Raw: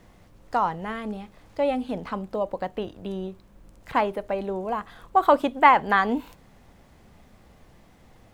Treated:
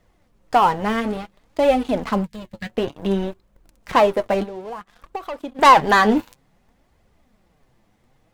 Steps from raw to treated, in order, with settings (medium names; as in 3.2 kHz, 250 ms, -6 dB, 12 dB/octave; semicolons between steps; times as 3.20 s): 2.24–2.70 s: time-frequency box 220–1600 Hz -25 dB; waveshaping leveller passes 3; 4.43–5.59 s: compression 3:1, threshold -33 dBFS, peak gain reduction 18.5 dB; flange 0.57 Hz, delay 1.4 ms, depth 8.4 ms, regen +40%; trim +2 dB